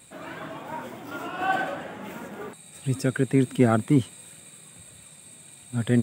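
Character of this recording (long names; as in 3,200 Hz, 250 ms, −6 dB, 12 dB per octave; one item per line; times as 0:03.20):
background noise floor −49 dBFS
spectral slope −5.0 dB per octave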